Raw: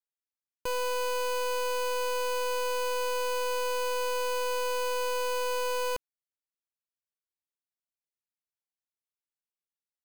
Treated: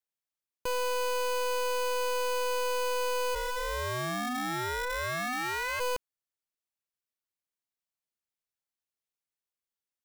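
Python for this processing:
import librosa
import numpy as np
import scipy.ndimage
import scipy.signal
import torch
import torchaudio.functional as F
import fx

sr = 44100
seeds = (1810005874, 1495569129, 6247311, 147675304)

y = fx.ring_mod(x, sr, carrier_hz=fx.line((3.34, 450.0), (5.79, 1600.0)), at=(3.34, 5.79), fade=0.02)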